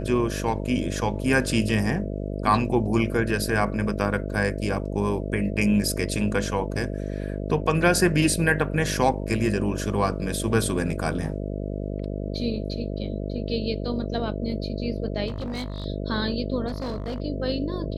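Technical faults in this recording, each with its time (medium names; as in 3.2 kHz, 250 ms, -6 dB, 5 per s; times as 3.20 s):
buzz 50 Hz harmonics 13 -30 dBFS
15.27–15.86 s: clipped -27 dBFS
16.67–17.20 s: clipped -26 dBFS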